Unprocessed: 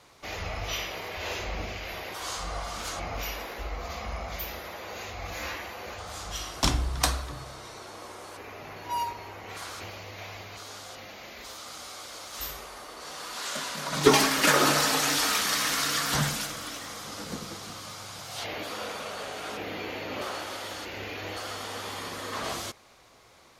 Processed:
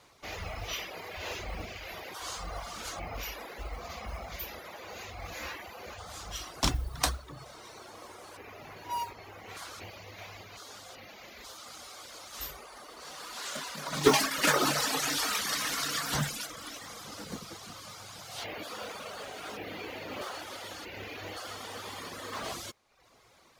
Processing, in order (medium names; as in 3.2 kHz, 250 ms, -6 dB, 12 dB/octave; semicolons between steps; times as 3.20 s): modulation noise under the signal 24 dB; reverb removal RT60 0.73 s; trim -3 dB